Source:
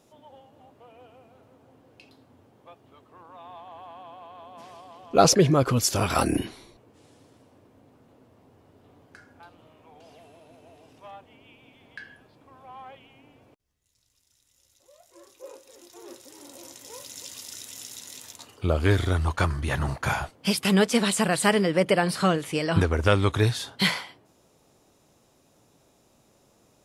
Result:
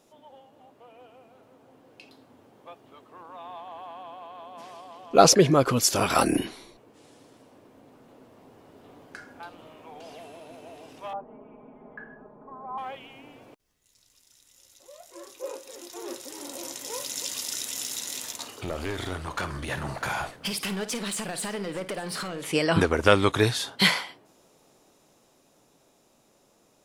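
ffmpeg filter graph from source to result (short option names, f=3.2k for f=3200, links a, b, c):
-filter_complex "[0:a]asettb=1/sr,asplit=3[a][b][c];[a]atrim=end=11.134[d];[b]atrim=start=11.13:end=12.78,asetpts=PTS-STARTPTS,afade=t=in:d=0.004:c=qsin,afade=t=out:st=1.646:d=0.004:c=qsin,lowpass=f=1.2k:w=0.5412,lowpass=f=1.2k:w=1.3066,aecho=1:1:4.8:0.71,atrim=end_sample=72765[e];[c]atrim=start=12.776[f];[d][e]acrossfade=d=0.004:c1=hsin:c2=qsin[g];[g][f]acrossfade=d=0.004:c1=qsin:c2=hsin,asettb=1/sr,asplit=3[h][i][j];[h]atrim=end=17.824[k];[i]atrim=start=17.82:end=22.52,asetpts=PTS-STARTPTS,afade=t=in:d=0.004:c=qsin,afade=t=out:st=4.696:d=0.004:c=qsin,acompressor=threshold=-31dB:ratio=8:attack=3.2:release=140:knee=1:detection=peak,volume=31dB,asoftclip=hard,volume=-31dB,aecho=1:1:54|605:0.237|0.112,atrim=end_sample=207270[l];[j]atrim=start=22.516[m];[k][l]acrossfade=d=0.004:c1=hsin:c2=qsin[n];[n][m]acrossfade=d=0.004:c1=qsin:c2=hsin,equalizer=f=78:w=0.87:g=-11.5,dynaudnorm=f=220:g=21:m=8dB"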